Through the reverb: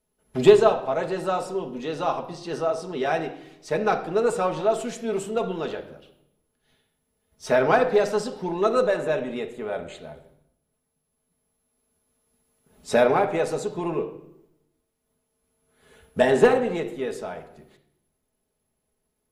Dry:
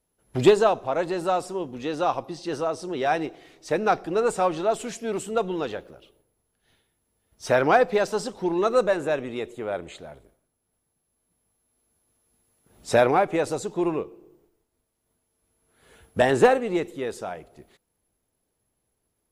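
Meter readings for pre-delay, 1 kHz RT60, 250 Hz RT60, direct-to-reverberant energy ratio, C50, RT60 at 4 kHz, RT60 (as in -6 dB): 5 ms, 0.70 s, 1.0 s, 3.0 dB, 11.5 dB, 0.60 s, 0.75 s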